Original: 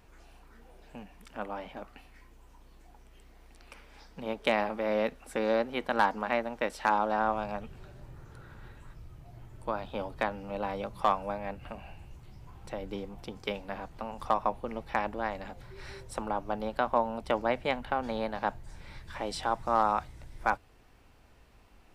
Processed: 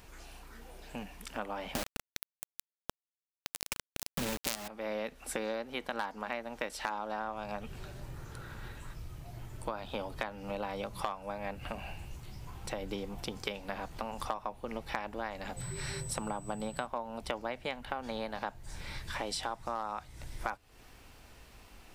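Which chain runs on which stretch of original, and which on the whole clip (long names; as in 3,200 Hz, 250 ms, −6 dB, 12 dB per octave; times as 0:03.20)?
0:01.75–0:04.68: low-shelf EQ 280 Hz +9 dB + log-companded quantiser 2 bits
0:15.56–0:16.85: parametric band 150 Hz +14 dB 0.65 octaves + steady tone 8,000 Hz −55 dBFS
whole clip: high-shelf EQ 2,600 Hz +8.5 dB; downward compressor 6 to 1, threshold −37 dBFS; level +3.5 dB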